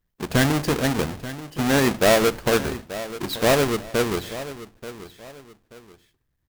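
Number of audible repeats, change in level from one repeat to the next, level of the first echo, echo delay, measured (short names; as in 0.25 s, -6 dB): 2, -9.5 dB, -14.5 dB, 0.883 s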